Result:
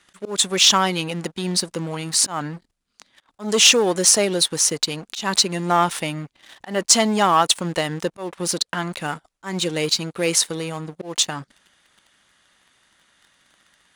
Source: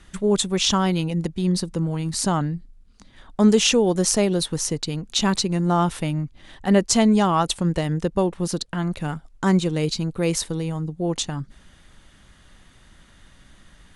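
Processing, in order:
leveller curve on the samples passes 2
volume swells 196 ms
high-pass filter 870 Hz 6 dB per octave
level +1 dB

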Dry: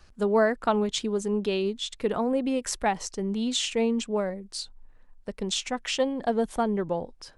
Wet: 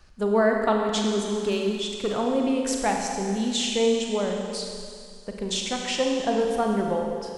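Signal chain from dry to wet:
0:01.34–0:02.18: hard clipping −21.5 dBFS, distortion −27 dB
convolution reverb RT60 2.3 s, pre-delay 33 ms, DRR 1 dB

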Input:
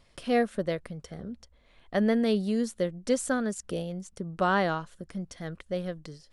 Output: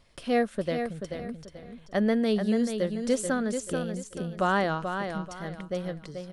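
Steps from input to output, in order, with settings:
repeating echo 435 ms, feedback 29%, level −7 dB

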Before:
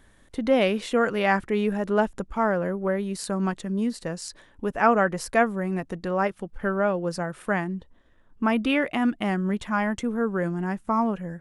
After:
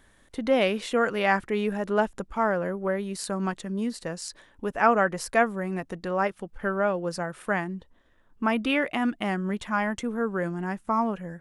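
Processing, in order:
low-shelf EQ 370 Hz −4.5 dB

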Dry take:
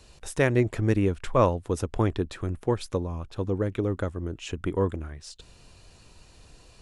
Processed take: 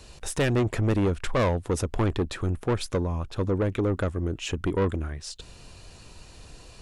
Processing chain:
soft clipping −24.5 dBFS, distortion −7 dB
level +5.5 dB

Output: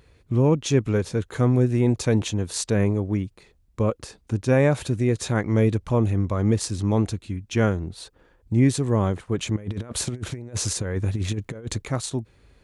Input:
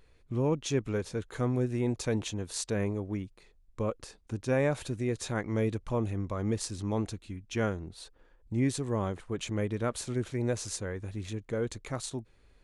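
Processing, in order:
0:09.56–0:11.82: compressor whose output falls as the input rises −37 dBFS, ratio −0.5
high-pass filter 63 Hz
low-shelf EQ 190 Hz +6.5 dB
level +7 dB

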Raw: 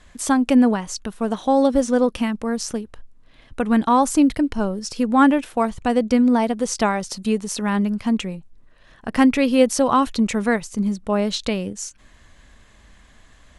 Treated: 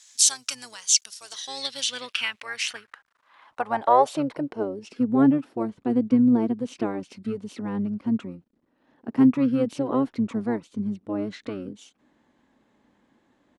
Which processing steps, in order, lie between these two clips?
spectral tilt +3.5 dB per octave
pitch-shifted copies added −12 semitones −5 dB
bit-depth reduction 10 bits, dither none
band-pass filter sweep 6,100 Hz → 260 Hz, 0:01.18–0:05.14
level +4.5 dB

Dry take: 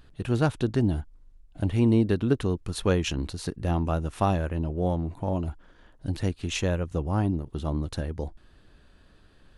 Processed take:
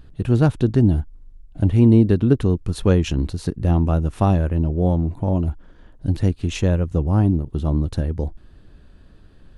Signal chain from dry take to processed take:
low-shelf EQ 470 Hz +10 dB

